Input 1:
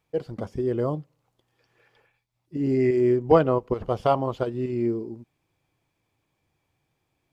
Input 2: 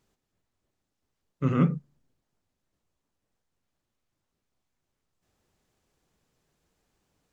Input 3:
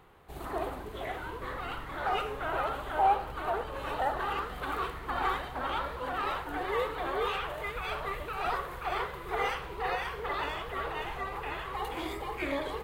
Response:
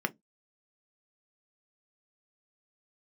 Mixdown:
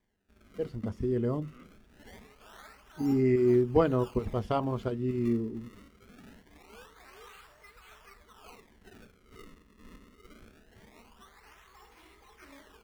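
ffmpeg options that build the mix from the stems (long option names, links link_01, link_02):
-filter_complex "[0:a]tiltshelf=frequency=840:gain=6.5,adelay=450,volume=0.5dB,asplit=2[link_01][link_02];[link_02]volume=-12.5dB[link_03];[1:a]highpass=frequency=260:width=0.5412,highpass=frequency=260:width=1.3066,volume=-17dB[link_04];[2:a]acrusher=samples=32:mix=1:aa=0.000001:lfo=1:lforange=51.2:lforate=0.23,highshelf=frequency=2700:gain=-10,volume=-13.5dB,asplit=2[link_05][link_06];[link_06]volume=-8dB[link_07];[3:a]atrim=start_sample=2205[link_08];[link_03][link_07]amix=inputs=2:normalize=0[link_09];[link_09][link_08]afir=irnorm=-1:irlink=0[link_10];[link_01][link_04][link_05][link_10]amix=inputs=4:normalize=0,equalizer=frequency=550:width=0.42:gain=-13.5"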